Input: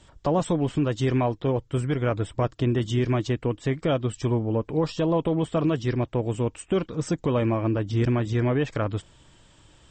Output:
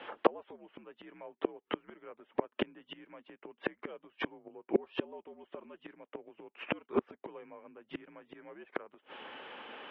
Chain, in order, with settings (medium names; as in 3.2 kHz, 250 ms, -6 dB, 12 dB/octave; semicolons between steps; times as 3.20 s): inverted gate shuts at -19 dBFS, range -36 dB; mistuned SSB -78 Hz 430–2900 Hz; trim +14.5 dB